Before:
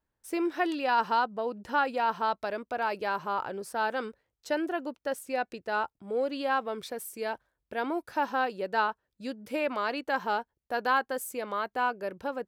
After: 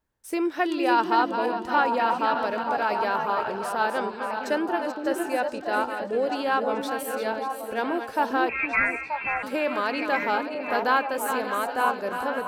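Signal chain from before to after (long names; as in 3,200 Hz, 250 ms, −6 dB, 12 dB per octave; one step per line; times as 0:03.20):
feedback delay that plays each chunk backwards 293 ms, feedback 59%, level −8 dB
0:08.49–0:09.43: voice inversion scrambler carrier 2,900 Hz
echo through a band-pass that steps 465 ms, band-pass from 310 Hz, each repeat 1.4 octaves, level −2 dB
level +3.5 dB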